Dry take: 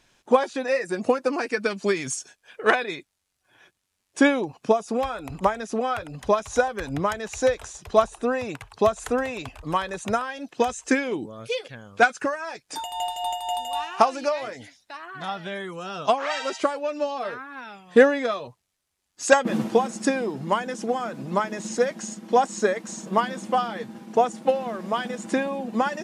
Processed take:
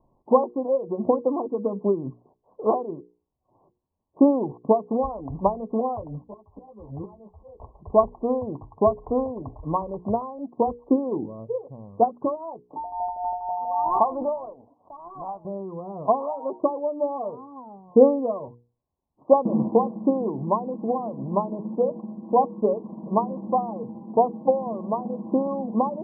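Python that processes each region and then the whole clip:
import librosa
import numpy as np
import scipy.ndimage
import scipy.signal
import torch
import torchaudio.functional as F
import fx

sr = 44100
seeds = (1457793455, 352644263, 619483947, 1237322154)

y = fx.chain(x, sr, fx.auto_swell(attack_ms=555.0),
    fx.ensemble(), at=(6.18, 7.6))
y = fx.chain(y, sr, fx.highpass(hz=1200.0, slope=6),
    fx.leveller(passes=1),
    fx.pre_swell(db_per_s=32.0), at=(13.5, 15.45))
y = scipy.signal.sosfilt(scipy.signal.cheby1(8, 1.0, 1100.0, 'lowpass', fs=sr, output='sos'), y)
y = fx.low_shelf(y, sr, hz=390.0, db=4.5)
y = fx.hum_notches(y, sr, base_hz=60, count=8)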